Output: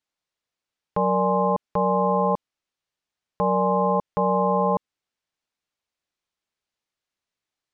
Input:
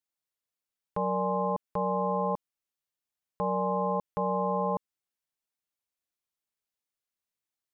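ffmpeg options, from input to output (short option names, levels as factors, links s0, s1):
-af "lowpass=5700,volume=2.37"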